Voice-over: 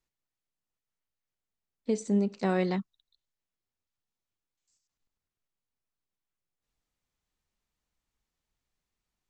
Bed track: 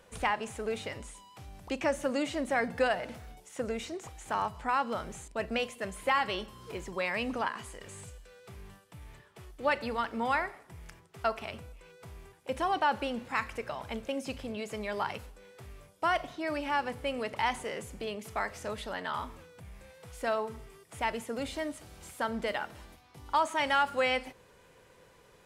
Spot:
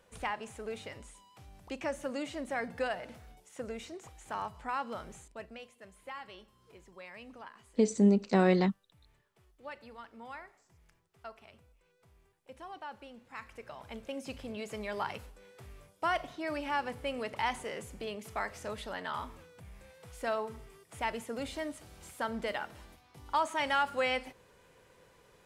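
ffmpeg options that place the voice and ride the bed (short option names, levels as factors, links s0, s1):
-filter_complex "[0:a]adelay=5900,volume=1.33[s0];[1:a]volume=2.51,afade=t=out:st=5.13:d=0.43:silence=0.298538,afade=t=in:st=13.23:d=1.4:silence=0.199526[s1];[s0][s1]amix=inputs=2:normalize=0"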